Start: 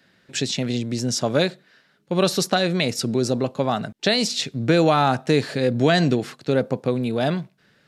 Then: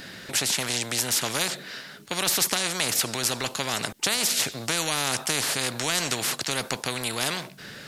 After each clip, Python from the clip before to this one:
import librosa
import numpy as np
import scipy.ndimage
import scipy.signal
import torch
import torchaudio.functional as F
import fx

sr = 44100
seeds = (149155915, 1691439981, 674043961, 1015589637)

y = fx.high_shelf(x, sr, hz=4700.0, db=9.5)
y = fx.spectral_comp(y, sr, ratio=4.0)
y = y * librosa.db_to_amplitude(-4.5)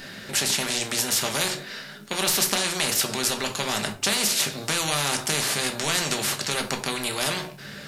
y = fx.room_shoebox(x, sr, seeds[0], volume_m3=300.0, walls='furnished', distance_m=1.2)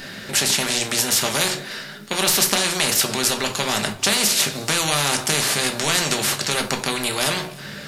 y = x + 10.0 ** (-22.5 / 20.0) * np.pad(x, (int(304 * sr / 1000.0), 0))[:len(x)]
y = y * librosa.db_to_amplitude(4.5)